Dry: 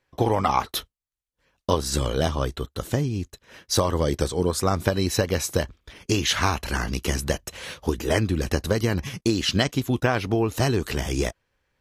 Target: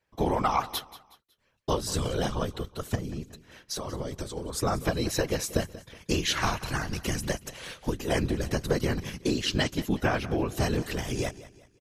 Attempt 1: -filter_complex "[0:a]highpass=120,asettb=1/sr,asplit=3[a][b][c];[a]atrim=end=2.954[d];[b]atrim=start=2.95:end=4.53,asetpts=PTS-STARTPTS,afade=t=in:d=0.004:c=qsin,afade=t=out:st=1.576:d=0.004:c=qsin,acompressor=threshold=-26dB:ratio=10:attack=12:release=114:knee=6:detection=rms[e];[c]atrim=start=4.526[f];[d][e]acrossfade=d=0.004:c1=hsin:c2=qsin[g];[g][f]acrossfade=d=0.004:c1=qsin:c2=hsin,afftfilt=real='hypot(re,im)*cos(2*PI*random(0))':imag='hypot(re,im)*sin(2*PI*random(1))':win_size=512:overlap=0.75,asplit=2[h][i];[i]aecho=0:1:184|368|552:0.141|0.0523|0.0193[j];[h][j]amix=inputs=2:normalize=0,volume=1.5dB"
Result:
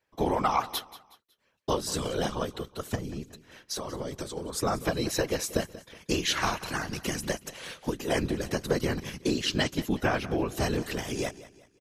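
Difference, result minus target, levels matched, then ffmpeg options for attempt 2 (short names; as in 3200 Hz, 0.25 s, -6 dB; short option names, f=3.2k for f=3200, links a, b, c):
125 Hz band -3.0 dB
-filter_complex "[0:a]asettb=1/sr,asplit=3[a][b][c];[a]atrim=end=2.954[d];[b]atrim=start=2.95:end=4.53,asetpts=PTS-STARTPTS,afade=t=in:d=0.004:c=qsin,afade=t=out:st=1.576:d=0.004:c=qsin,acompressor=threshold=-26dB:ratio=10:attack=12:release=114:knee=6:detection=rms[e];[c]atrim=start=4.526[f];[d][e]acrossfade=d=0.004:c1=hsin:c2=qsin[g];[g][f]acrossfade=d=0.004:c1=qsin:c2=hsin,afftfilt=real='hypot(re,im)*cos(2*PI*random(0))':imag='hypot(re,im)*sin(2*PI*random(1))':win_size=512:overlap=0.75,asplit=2[h][i];[i]aecho=0:1:184|368|552:0.141|0.0523|0.0193[j];[h][j]amix=inputs=2:normalize=0,volume=1.5dB"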